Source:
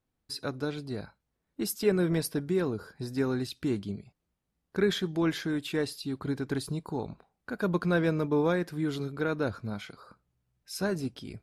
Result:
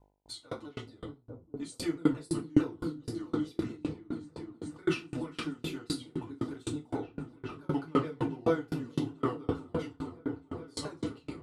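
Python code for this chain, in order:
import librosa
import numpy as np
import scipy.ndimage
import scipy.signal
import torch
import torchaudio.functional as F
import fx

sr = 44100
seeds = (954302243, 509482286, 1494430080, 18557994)

y = fx.pitch_ramps(x, sr, semitones=-5.5, every_ms=217)
y = fx.notch(y, sr, hz=1600.0, q=17.0)
y = fx.echo_opening(y, sr, ms=424, hz=200, octaves=1, feedback_pct=70, wet_db=-3)
y = fx.rev_fdn(y, sr, rt60_s=0.44, lf_ratio=0.75, hf_ratio=0.8, size_ms=20.0, drr_db=-4.5)
y = fx.dmg_buzz(y, sr, base_hz=50.0, harmonics=20, level_db=-59.0, tilt_db=-3, odd_only=False)
y = fx.peak_eq(y, sr, hz=150.0, db=-5.0, octaves=1.5)
y = fx.tremolo_decay(y, sr, direction='decaying', hz=3.9, depth_db=31)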